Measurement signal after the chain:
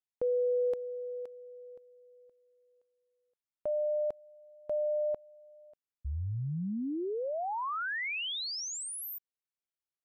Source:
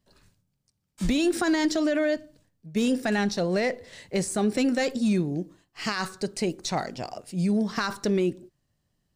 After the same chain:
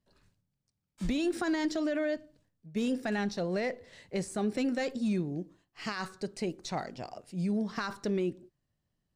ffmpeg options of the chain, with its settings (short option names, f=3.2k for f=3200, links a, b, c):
-af "highshelf=f=5.4k:g=-7,volume=-6.5dB"